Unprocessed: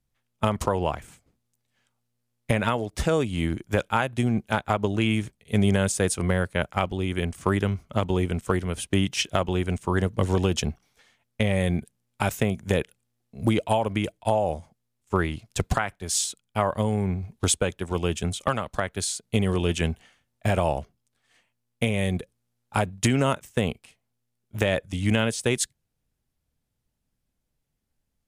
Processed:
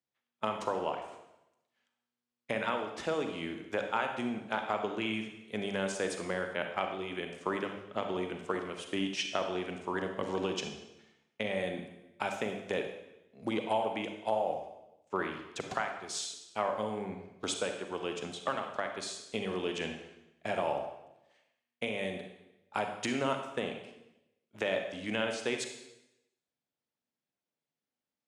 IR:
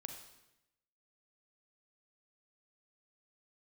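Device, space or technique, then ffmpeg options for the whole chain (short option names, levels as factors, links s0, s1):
supermarket ceiling speaker: -filter_complex "[0:a]highpass=310,lowpass=5500[s0];[1:a]atrim=start_sample=2205[s1];[s0][s1]afir=irnorm=-1:irlink=0,volume=0.708"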